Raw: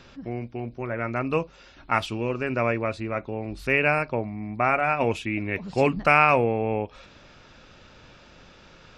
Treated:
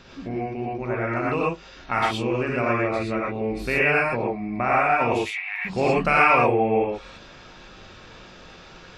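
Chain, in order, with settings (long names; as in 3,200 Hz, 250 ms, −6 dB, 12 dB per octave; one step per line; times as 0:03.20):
0:05.19–0:05.65: Chebyshev high-pass filter 740 Hz, order 8
in parallel at −1 dB: downward compressor, threshold −30 dBFS, peak gain reduction 16 dB
on the sum: reverb whose tail is shaped and stops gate 140 ms rising, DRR −4.5 dB
level −5 dB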